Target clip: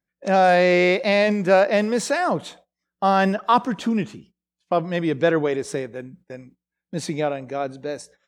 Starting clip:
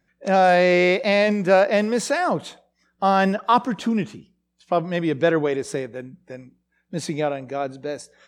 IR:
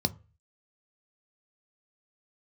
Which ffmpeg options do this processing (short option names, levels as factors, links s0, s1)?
-af "agate=range=0.141:threshold=0.00355:ratio=16:detection=peak"